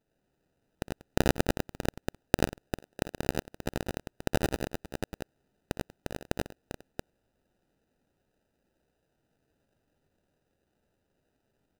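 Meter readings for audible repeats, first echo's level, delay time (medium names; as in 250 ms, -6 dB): 5, -15.0 dB, 61 ms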